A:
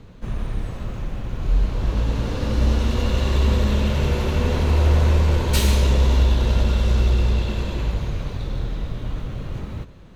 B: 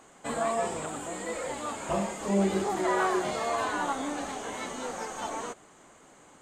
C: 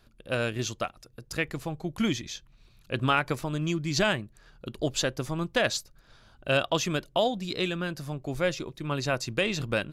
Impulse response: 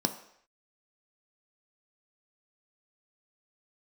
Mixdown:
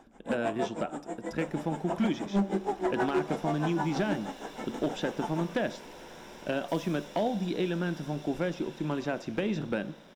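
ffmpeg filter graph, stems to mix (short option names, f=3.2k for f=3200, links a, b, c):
-filter_complex "[0:a]highpass=f=1.5k:p=1,highshelf=f=5.1k:g=9.5,aeval=exprs='(tanh(89.1*val(0)+0.7)-tanh(0.7))/89.1':c=same,adelay=1150,volume=-8dB,asplit=2[a][b];[b]volume=-9dB[c];[1:a]aeval=exprs='val(0)*pow(10,-23*(0.5-0.5*cos(2*PI*6.3*n/s))/20)':c=same,volume=-4dB,asplit=2[d][e];[e]volume=-8.5dB[f];[2:a]acrossover=split=490|4100[g][h][i];[g]acompressor=threshold=-33dB:ratio=4[j];[h]acompressor=threshold=-33dB:ratio=4[k];[i]acompressor=threshold=-50dB:ratio=4[l];[j][k][l]amix=inputs=3:normalize=0,volume=-2.5dB,asplit=2[m][n];[n]volume=-9.5dB[o];[3:a]atrim=start_sample=2205[p];[c][f][o]amix=inputs=3:normalize=0[q];[q][p]afir=irnorm=-1:irlink=0[r];[a][d][m][r]amix=inputs=4:normalize=0,highshelf=f=3.4k:g=-10.5,volume=21dB,asoftclip=hard,volume=-21dB"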